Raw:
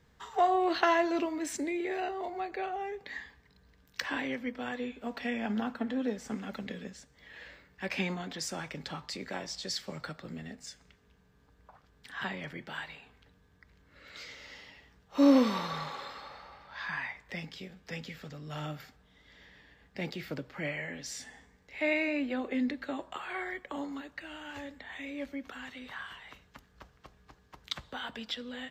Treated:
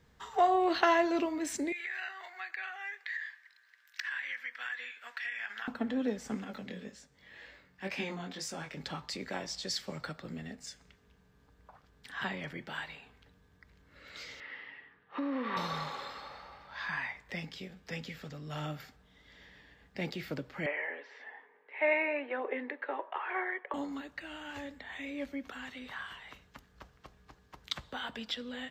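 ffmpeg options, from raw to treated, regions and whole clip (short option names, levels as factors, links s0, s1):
-filter_complex "[0:a]asettb=1/sr,asplit=3[s0][s1][s2];[s0]atrim=end=1.724[s3];[s1]atrim=start=1.72:end=5.68,asetpts=PTS-STARTPTS,afade=t=in:d=0.004:c=qsin,afade=t=out:st=3.956:d=0.004:c=qsin,highpass=f=1700:t=q:w=3.6,acompressor=threshold=0.0178:ratio=4:attack=3.2:release=140:knee=1:detection=peak[s4];[s2]atrim=start=5.676[s5];[s3][s4]acrossfade=d=0.004:c1=hsin:c2=qsin[s6];[s6][s5]acrossfade=d=0.004:c1=qsin:c2=hsin,asettb=1/sr,asplit=3[s7][s8][s9];[s7]atrim=end=6.444[s10];[s8]atrim=start=6.44:end=8.77,asetpts=PTS-STARTPTS,afade=t=in:d=0.004:c=qsin,afade=t=out:st=2.326:d=0.004:c=qsin,highpass=67,flanger=delay=18.5:depth=4:speed=1.9[s11];[s9]atrim=start=8.766[s12];[s10][s11]acrossfade=d=0.004:c1=hsin:c2=qsin[s13];[s13][s12]acrossfade=d=0.004:c1=qsin:c2=hsin,asettb=1/sr,asplit=3[s14][s15][s16];[s14]atrim=end=14.404[s17];[s15]atrim=start=14.4:end=15.57,asetpts=PTS-STARTPTS,afade=t=in:d=0.004:c=qsin,afade=t=out:st=1.166:d=0.004:c=qsin,acompressor=threshold=0.0355:ratio=12:attack=3.2:release=140:knee=1:detection=peak,highpass=180,equalizer=f=200:t=q:w=4:g=-7,equalizer=f=620:t=q:w=4:g=-6,equalizer=f=1200:t=q:w=4:g=4,equalizer=f=1800:t=q:w=4:g=9,lowpass=f=3100:w=0.5412,lowpass=f=3100:w=1.3066[s18];[s16]atrim=start=15.566[s19];[s17][s18]acrossfade=d=0.004:c1=hsin:c2=qsin[s20];[s20][s19]acrossfade=d=0.004:c1=qsin:c2=hsin,asettb=1/sr,asplit=3[s21][s22][s23];[s21]atrim=end=20.664[s24];[s22]atrim=start=20.66:end=23.74,asetpts=PTS-STARTPTS,afade=t=in:d=0.004:c=qsin,afade=t=out:st=3.076:d=0.004:c=qsin,aphaser=in_gain=1:out_gain=1:delay=2.4:decay=0.22:speed=1.1:type=triangular,highpass=f=380:w=0.5412,highpass=f=380:w=1.3066,equalizer=f=420:t=q:w=4:g=6,equalizer=f=940:t=q:w=4:g=8,equalizer=f=1800:t=q:w=4:g=4,lowpass=f=2600:w=0.5412,lowpass=f=2600:w=1.3066[s25];[s23]atrim=start=23.736[s26];[s24][s25]acrossfade=d=0.004:c1=hsin:c2=qsin[s27];[s27][s26]acrossfade=d=0.004:c1=qsin:c2=hsin"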